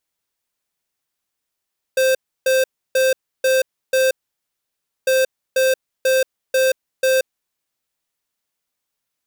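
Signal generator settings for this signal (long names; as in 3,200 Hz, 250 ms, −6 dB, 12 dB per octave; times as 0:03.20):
beeps in groups square 523 Hz, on 0.18 s, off 0.31 s, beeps 5, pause 0.96 s, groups 2, −15.5 dBFS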